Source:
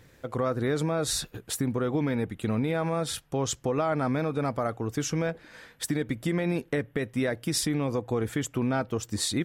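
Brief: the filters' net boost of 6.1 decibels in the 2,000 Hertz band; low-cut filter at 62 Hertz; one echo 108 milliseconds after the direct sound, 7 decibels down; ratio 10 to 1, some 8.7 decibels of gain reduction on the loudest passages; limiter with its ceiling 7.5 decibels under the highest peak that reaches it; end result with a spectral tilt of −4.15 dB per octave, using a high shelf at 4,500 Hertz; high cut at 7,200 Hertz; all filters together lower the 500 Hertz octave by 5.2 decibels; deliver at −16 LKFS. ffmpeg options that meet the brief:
ffmpeg -i in.wav -af "highpass=62,lowpass=7200,equalizer=frequency=500:width_type=o:gain=-7,equalizer=frequency=2000:width_type=o:gain=6.5,highshelf=frequency=4500:gain=8,acompressor=threshold=-32dB:ratio=10,alimiter=level_in=3dB:limit=-24dB:level=0:latency=1,volume=-3dB,aecho=1:1:108:0.447,volume=21dB" out.wav

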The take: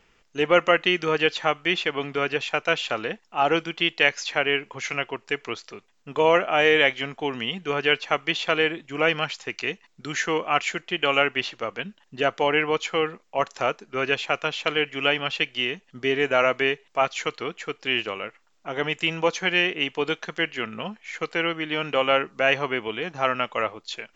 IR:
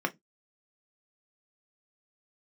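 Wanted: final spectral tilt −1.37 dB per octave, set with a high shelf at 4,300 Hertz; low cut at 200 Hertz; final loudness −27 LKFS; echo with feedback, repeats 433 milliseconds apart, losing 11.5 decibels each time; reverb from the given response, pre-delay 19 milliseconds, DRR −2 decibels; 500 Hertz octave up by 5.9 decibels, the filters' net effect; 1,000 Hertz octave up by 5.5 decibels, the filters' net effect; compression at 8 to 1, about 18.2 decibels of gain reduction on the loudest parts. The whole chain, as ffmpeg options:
-filter_complex "[0:a]highpass=200,equalizer=frequency=500:width_type=o:gain=5.5,equalizer=frequency=1000:width_type=o:gain=6,highshelf=frequency=4300:gain=-3.5,acompressor=threshold=-27dB:ratio=8,aecho=1:1:433|866|1299:0.266|0.0718|0.0194,asplit=2[link_01][link_02];[1:a]atrim=start_sample=2205,adelay=19[link_03];[link_02][link_03]afir=irnorm=-1:irlink=0,volume=-6dB[link_04];[link_01][link_04]amix=inputs=2:normalize=0,volume=0.5dB"

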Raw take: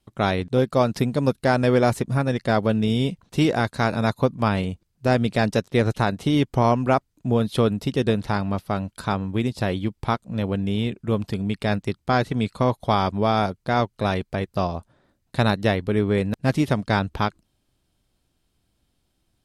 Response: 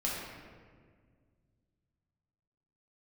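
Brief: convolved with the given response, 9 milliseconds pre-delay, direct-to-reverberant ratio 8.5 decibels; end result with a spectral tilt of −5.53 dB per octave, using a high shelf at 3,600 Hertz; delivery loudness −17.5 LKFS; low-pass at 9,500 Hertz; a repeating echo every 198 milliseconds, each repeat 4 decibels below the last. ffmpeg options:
-filter_complex "[0:a]lowpass=9500,highshelf=frequency=3600:gain=-6,aecho=1:1:198|396|594|792|990|1188|1386|1584|1782:0.631|0.398|0.25|0.158|0.0994|0.0626|0.0394|0.0249|0.0157,asplit=2[link_01][link_02];[1:a]atrim=start_sample=2205,adelay=9[link_03];[link_02][link_03]afir=irnorm=-1:irlink=0,volume=-14dB[link_04];[link_01][link_04]amix=inputs=2:normalize=0,volume=3dB"

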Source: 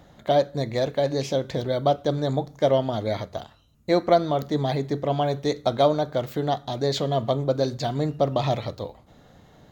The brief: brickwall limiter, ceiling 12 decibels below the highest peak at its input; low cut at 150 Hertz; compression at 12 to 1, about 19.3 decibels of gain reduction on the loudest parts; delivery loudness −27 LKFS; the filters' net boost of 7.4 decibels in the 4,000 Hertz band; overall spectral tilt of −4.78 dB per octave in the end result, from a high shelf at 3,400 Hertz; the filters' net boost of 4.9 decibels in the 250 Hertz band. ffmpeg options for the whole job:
ffmpeg -i in.wav -af "highpass=150,equalizer=frequency=250:width_type=o:gain=7,highshelf=frequency=3400:gain=5.5,equalizer=frequency=4000:width_type=o:gain=5,acompressor=threshold=-32dB:ratio=12,volume=13dB,alimiter=limit=-15.5dB:level=0:latency=1" out.wav

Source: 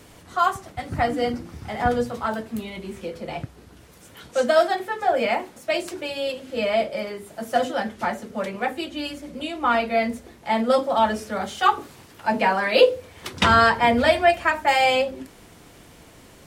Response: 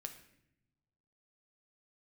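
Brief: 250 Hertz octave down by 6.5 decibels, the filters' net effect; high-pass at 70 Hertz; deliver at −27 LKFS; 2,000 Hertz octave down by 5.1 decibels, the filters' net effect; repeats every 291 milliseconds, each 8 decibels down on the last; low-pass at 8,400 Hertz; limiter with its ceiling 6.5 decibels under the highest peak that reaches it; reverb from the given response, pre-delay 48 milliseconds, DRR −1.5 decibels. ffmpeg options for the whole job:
-filter_complex "[0:a]highpass=70,lowpass=8400,equalizer=frequency=250:width_type=o:gain=-7.5,equalizer=frequency=2000:width_type=o:gain=-6.5,alimiter=limit=-12.5dB:level=0:latency=1,aecho=1:1:291|582|873|1164|1455:0.398|0.159|0.0637|0.0255|0.0102,asplit=2[link_01][link_02];[1:a]atrim=start_sample=2205,adelay=48[link_03];[link_02][link_03]afir=irnorm=-1:irlink=0,volume=5dB[link_04];[link_01][link_04]amix=inputs=2:normalize=0,volume=-5dB"

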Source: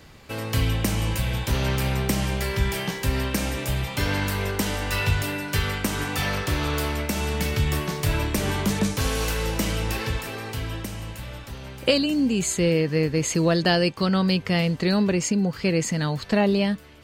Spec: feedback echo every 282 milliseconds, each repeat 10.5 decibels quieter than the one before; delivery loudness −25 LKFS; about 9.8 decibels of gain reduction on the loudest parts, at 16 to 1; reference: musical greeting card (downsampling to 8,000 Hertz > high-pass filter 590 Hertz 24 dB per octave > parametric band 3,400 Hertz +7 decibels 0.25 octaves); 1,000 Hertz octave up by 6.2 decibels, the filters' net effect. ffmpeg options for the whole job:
ffmpeg -i in.wav -af "equalizer=frequency=1000:width_type=o:gain=8,acompressor=threshold=-23dB:ratio=16,aecho=1:1:282|564|846:0.299|0.0896|0.0269,aresample=8000,aresample=44100,highpass=frequency=590:width=0.5412,highpass=frequency=590:width=1.3066,equalizer=frequency=3400:width_type=o:width=0.25:gain=7,volume=6.5dB" out.wav

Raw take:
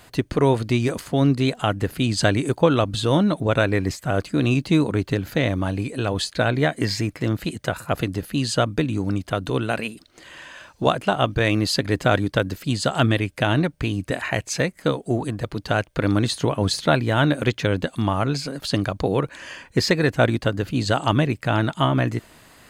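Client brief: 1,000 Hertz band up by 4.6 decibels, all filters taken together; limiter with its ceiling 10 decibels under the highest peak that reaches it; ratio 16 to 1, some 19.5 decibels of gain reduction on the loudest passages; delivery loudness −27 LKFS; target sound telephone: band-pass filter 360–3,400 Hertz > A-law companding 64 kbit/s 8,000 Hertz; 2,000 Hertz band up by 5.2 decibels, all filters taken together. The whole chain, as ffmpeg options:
ffmpeg -i in.wav -af "equalizer=frequency=1000:width_type=o:gain=5,equalizer=frequency=2000:width_type=o:gain=5.5,acompressor=threshold=-30dB:ratio=16,alimiter=limit=-24dB:level=0:latency=1,highpass=360,lowpass=3400,volume=13dB" -ar 8000 -c:a pcm_alaw out.wav

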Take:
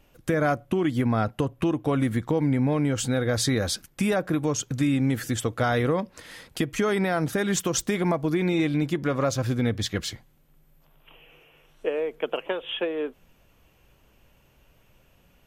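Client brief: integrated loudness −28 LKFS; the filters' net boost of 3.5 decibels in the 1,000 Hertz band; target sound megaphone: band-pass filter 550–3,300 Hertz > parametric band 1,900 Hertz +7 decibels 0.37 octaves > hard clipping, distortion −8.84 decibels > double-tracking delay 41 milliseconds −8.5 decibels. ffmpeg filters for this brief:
ffmpeg -i in.wav -filter_complex "[0:a]highpass=550,lowpass=3300,equalizer=frequency=1000:width_type=o:gain=5.5,equalizer=frequency=1900:width_type=o:width=0.37:gain=7,asoftclip=type=hard:threshold=-24dB,asplit=2[link_01][link_02];[link_02]adelay=41,volume=-8.5dB[link_03];[link_01][link_03]amix=inputs=2:normalize=0,volume=3dB" out.wav

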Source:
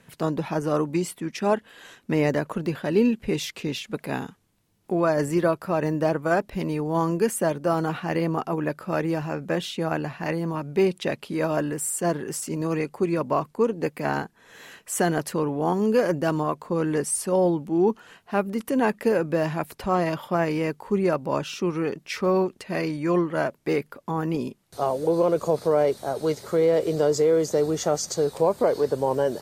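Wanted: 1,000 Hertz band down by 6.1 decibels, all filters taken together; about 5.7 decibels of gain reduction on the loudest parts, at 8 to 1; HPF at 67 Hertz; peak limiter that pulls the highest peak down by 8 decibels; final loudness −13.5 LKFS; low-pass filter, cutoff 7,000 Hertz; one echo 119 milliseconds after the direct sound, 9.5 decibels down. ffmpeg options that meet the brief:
ffmpeg -i in.wav -af "highpass=67,lowpass=7000,equalizer=frequency=1000:width_type=o:gain=-8.5,acompressor=threshold=-23dB:ratio=8,alimiter=limit=-22.5dB:level=0:latency=1,aecho=1:1:119:0.335,volume=18.5dB" out.wav

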